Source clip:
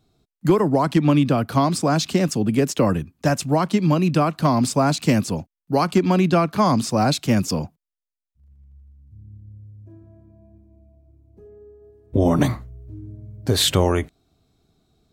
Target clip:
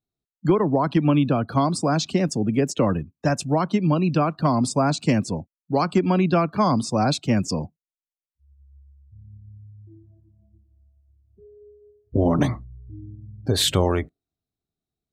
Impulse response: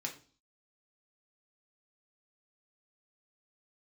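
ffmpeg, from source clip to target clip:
-af "afftdn=noise_reduction=23:noise_floor=-36,volume=-2dB"

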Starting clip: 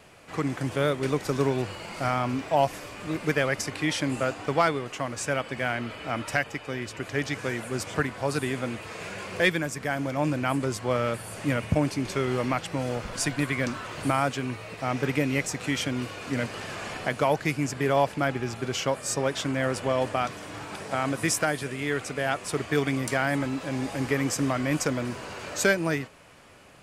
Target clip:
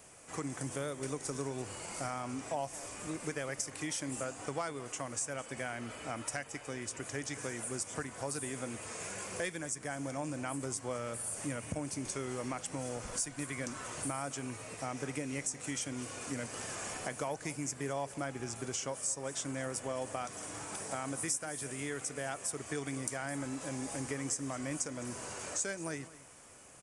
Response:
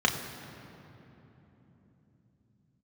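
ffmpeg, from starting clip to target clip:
-filter_complex "[0:a]aresample=22050,aresample=44100,aexciter=amount=8:drive=2.5:freq=5900,acompressor=threshold=-29dB:ratio=3,aecho=1:1:211:0.126,asplit=2[link_01][link_02];[1:a]atrim=start_sample=2205,atrim=end_sample=3528[link_03];[link_02][link_03]afir=irnorm=-1:irlink=0,volume=-28dB[link_04];[link_01][link_04]amix=inputs=2:normalize=0,volume=-7dB"

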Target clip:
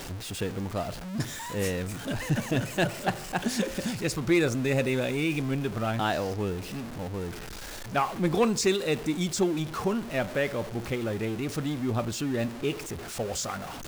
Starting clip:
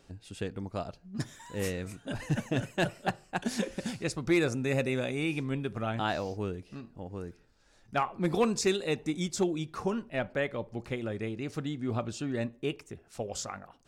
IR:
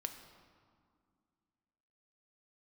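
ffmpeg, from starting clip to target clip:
-af "aeval=exprs='val(0)+0.5*0.0158*sgn(val(0))':channel_layout=same,volume=2dB"

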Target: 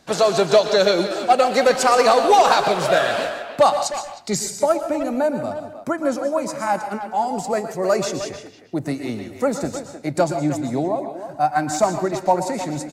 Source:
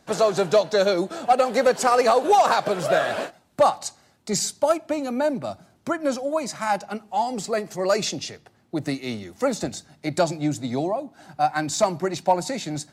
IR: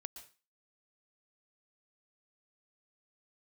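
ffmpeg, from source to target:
-filter_complex "[0:a]asetnsamples=nb_out_samples=441:pad=0,asendcmd='4.35 equalizer g -8',equalizer=frequency=3700:width_type=o:width=1.5:gain=4,asplit=2[link_01][link_02];[link_02]adelay=310,highpass=300,lowpass=3400,asoftclip=type=hard:threshold=-16dB,volume=-10dB[link_03];[link_01][link_03]amix=inputs=2:normalize=0[link_04];[1:a]atrim=start_sample=2205[link_05];[link_04][link_05]afir=irnorm=-1:irlink=0,volume=7.5dB"

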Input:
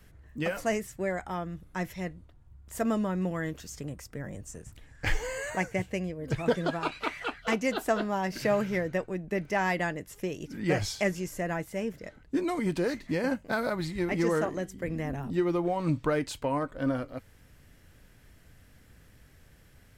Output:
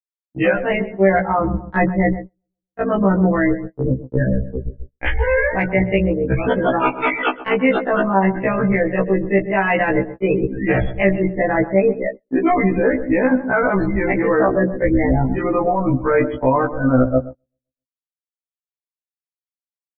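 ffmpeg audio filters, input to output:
ffmpeg -i in.wav -filter_complex "[0:a]lowpass=frequency=3400:width=0.5412,lowpass=frequency=3400:width=1.3066,aeval=exprs='sgn(val(0))*max(abs(val(0))-0.00282,0)':channel_layout=same,bandreject=frequency=60:width_type=h:width=6,bandreject=frequency=120:width_type=h:width=6,bandreject=frequency=180:width_type=h:width=6,bandreject=frequency=240:width_type=h:width=6,bandreject=frequency=300:width_type=h:width=6,bandreject=frequency=360:width_type=h:width=6,bandreject=frequency=420:width_type=h:width=6,bandreject=frequency=480:width_type=h:width=6,bandreject=frequency=540:width_type=h:width=6,bandreject=frequency=600:width_type=h:width=6,afftfilt=real='re*gte(hypot(re,im),0.0224)':imag='im*gte(hypot(re,im),0.0224)':win_size=1024:overlap=0.75,tremolo=f=30:d=0.571,areverse,acompressor=threshold=-40dB:ratio=8,areverse,asubboost=boost=4:cutoff=60,asplit=2[link_01][link_02];[link_02]adelay=129,lowpass=frequency=1000:poles=1,volume=-13.5dB,asplit=2[link_03][link_04];[link_04]adelay=129,lowpass=frequency=1000:poles=1,volume=0.47,asplit=2[link_05][link_06];[link_06]adelay=129,lowpass=frequency=1000:poles=1,volume=0.47,asplit=2[link_07][link_08];[link_08]adelay=129,lowpass=frequency=1000:poles=1,volume=0.47,asplit=2[link_09][link_10];[link_10]adelay=129,lowpass=frequency=1000:poles=1,volume=0.47[link_11];[link_03][link_05][link_07][link_09][link_11]amix=inputs=5:normalize=0[link_12];[link_01][link_12]amix=inputs=2:normalize=0,agate=range=-36dB:threshold=-54dB:ratio=16:detection=peak,alimiter=level_in=35dB:limit=-1dB:release=50:level=0:latency=1,afftfilt=real='re*1.73*eq(mod(b,3),0)':imag='im*1.73*eq(mod(b,3),0)':win_size=2048:overlap=0.75,volume=-3dB" out.wav

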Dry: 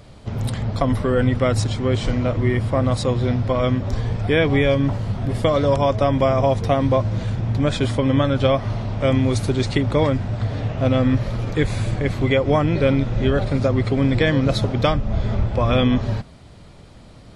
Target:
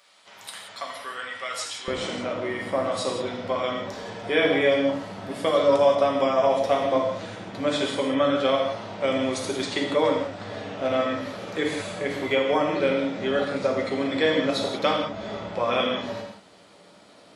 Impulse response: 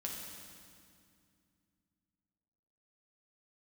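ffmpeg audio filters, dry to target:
-filter_complex "[0:a]asetnsamples=nb_out_samples=441:pad=0,asendcmd='1.88 highpass f 390',highpass=1300[link_01];[1:a]atrim=start_sample=2205,afade=type=out:start_time=0.24:duration=0.01,atrim=end_sample=11025[link_02];[link_01][link_02]afir=irnorm=-1:irlink=0"

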